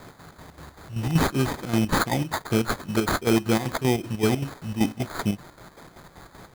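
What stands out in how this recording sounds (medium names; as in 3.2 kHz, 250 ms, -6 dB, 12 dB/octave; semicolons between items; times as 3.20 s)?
a quantiser's noise floor 8-bit, dither triangular; chopped level 5.2 Hz, depth 60%, duty 60%; aliases and images of a low sample rate 2.8 kHz, jitter 0%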